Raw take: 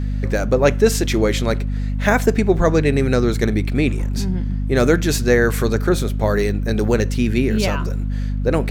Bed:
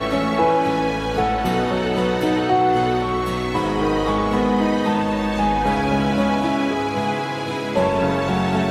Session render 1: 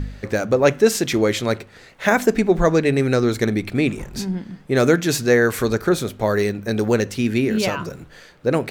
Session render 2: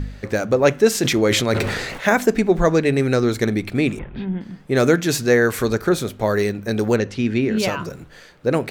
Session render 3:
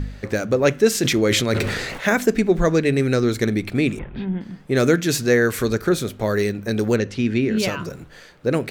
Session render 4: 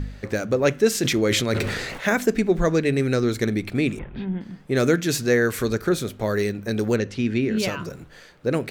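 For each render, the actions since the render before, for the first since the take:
hum removal 50 Hz, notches 5
0:00.95–0:02.14: level that may fall only so fast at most 33 dB per second; 0:03.99–0:04.41: Chebyshev low-pass filter 3,400 Hz, order 5; 0:06.96–0:07.57: high-frequency loss of the air 93 metres
dynamic equaliser 840 Hz, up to −6 dB, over −33 dBFS, Q 1.4
level −2.5 dB

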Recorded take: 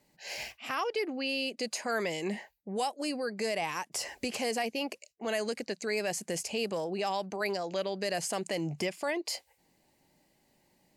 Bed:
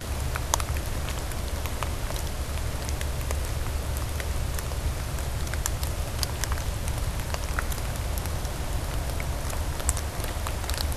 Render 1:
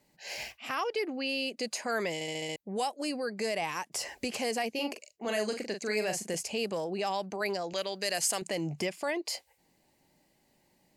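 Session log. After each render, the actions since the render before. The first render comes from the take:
0:02.14: stutter in place 0.07 s, 6 plays
0:04.70–0:06.35: double-tracking delay 42 ms −6.5 dB
0:07.73–0:08.42: spectral tilt +2.5 dB per octave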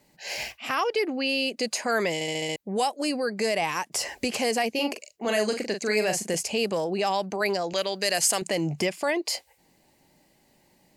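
level +6.5 dB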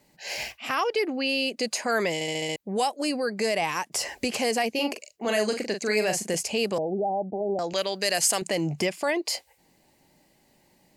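0:06.78–0:07.59: Butterworth low-pass 850 Hz 96 dB per octave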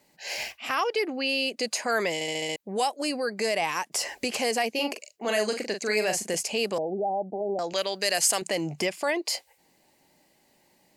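low-shelf EQ 190 Hz −9.5 dB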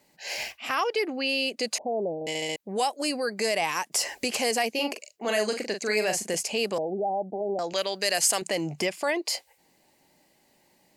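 0:01.78–0:02.27: Butterworth low-pass 830 Hz 72 dB per octave
0:02.91–0:04.76: high-shelf EQ 4,900 Hz +4 dB

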